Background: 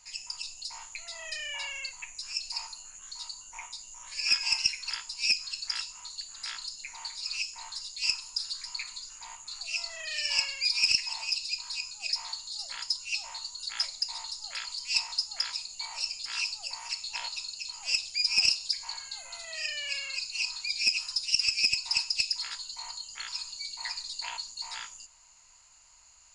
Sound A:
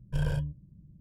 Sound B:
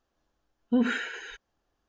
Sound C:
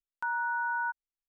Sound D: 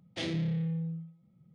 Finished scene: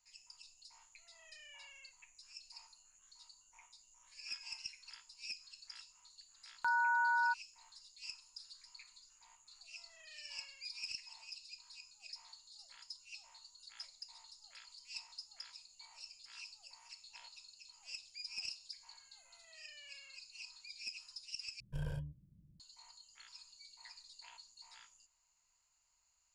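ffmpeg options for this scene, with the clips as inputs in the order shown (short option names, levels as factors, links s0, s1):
-filter_complex "[0:a]volume=0.106,asplit=2[s0][s1];[s0]atrim=end=21.604[s2];[1:a]atrim=end=1,asetpts=PTS-STARTPTS,volume=0.266[s3];[s1]atrim=start=22.596[s4];[3:a]atrim=end=1.28,asetpts=PTS-STARTPTS,volume=0.891,afade=t=in:d=0.004:c=hsin,afade=t=out:st=1.276:d=0.004:c=hsin,adelay=283122S[s5];[s2][s3]acrossfade=d=0.004:c1=hsin:c2=hsin[s6];[s6][s4]acrossfade=d=0.004:c1=hsin:c2=hsin[s7];[s7][s5]amix=inputs=2:normalize=0"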